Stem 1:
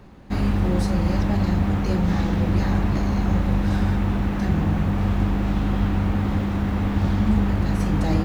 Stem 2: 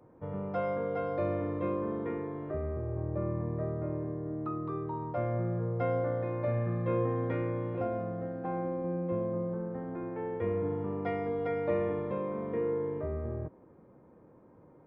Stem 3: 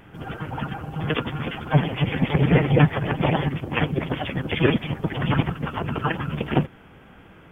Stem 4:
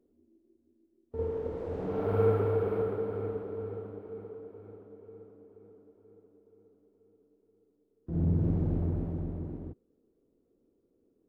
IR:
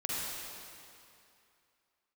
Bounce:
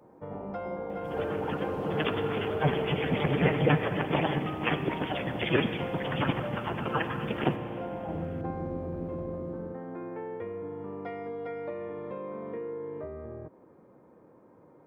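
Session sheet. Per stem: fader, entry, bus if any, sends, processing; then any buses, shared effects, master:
-4.5 dB, 0.00 s, no send, steep low-pass 940 Hz 96 dB/oct; limiter -17.5 dBFS, peak gain reduction 9.5 dB; tilt +4 dB/oct
+3.0 dB, 0.00 s, no send, compressor 6:1, threshold -36 dBFS, peak gain reduction 10.5 dB
-6.0 dB, 0.90 s, send -13 dB, dry
+2.0 dB, 0.00 s, no send, compressor, threshold -30 dBFS, peak gain reduction 9.5 dB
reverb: on, RT60 2.6 s, pre-delay 41 ms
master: low shelf 130 Hz -12 dB

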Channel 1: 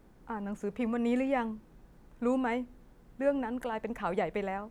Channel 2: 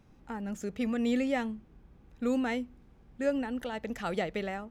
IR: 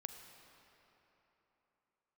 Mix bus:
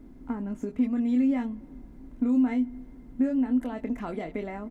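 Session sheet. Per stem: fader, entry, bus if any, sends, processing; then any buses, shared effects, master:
-4.0 dB, 0.00 s, send -10.5 dB, low shelf 490 Hz +10.5 dB; compressor, threshold -30 dBFS, peak gain reduction 12.5 dB; small resonant body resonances 260/2100 Hz, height 14 dB, ringing for 75 ms
-12.5 dB, 24 ms, no send, dry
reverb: on, RT60 3.6 s, pre-delay 36 ms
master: comb 3 ms, depth 31%

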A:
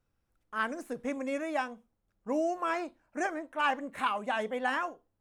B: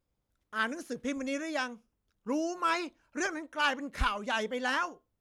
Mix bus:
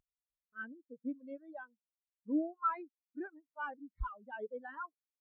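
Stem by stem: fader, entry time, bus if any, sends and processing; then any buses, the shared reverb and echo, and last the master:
+1.0 dB, 0.00 s, no send, pre-emphasis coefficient 0.8
+2.0 dB, 0.00 s, no send, steep low-pass 4700 Hz 72 dB/oct; reverb removal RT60 1.7 s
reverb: off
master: upward compressor, threshold -41 dBFS; hard clip -23.5 dBFS, distortion -13 dB; spectral expander 2.5:1

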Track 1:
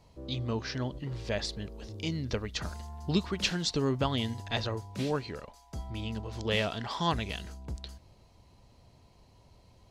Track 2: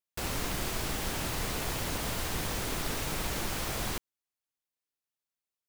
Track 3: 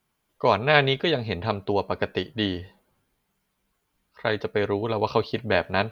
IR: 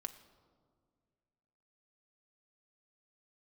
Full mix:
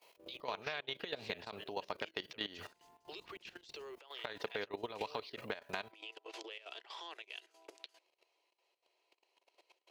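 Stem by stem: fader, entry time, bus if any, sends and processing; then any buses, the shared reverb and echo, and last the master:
-1.0 dB, 0.00 s, no bus, no send, steep high-pass 330 Hz 96 dB/oct; bell 2600 Hz +11.5 dB 0.87 oct; compressor 3:1, threshold -40 dBFS, peak gain reduction 18 dB
-11.0 dB, 0.00 s, bus A, no send, ladder low-pass 560 Hz, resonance 25%; auto duck -8 dB, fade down 0.80 s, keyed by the third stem
-1.0 dB, 0.00 s, bus A, no send, tilt +2.5 dB/oct
bus A: 0.0 dB, HPF 190 Hz 6 dB/oct; compressor 3:1, threshold -27 dBFS, peak gain reduction 11.5 dB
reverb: off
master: level quantiser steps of 16 dB; step gate "xx.xx.xx" 187 bpm -12 dB; compressor 6:1, threshold -36 dBFS, peak gain reduction 9 dB

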